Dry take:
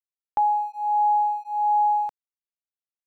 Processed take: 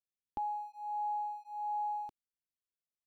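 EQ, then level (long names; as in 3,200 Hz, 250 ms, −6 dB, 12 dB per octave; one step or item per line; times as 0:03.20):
flat-topped bell 1,000 Hz −14 dB 2.5 octaves
high-shelf EQ 2,100 Hz −10.5 dB
0.0 dB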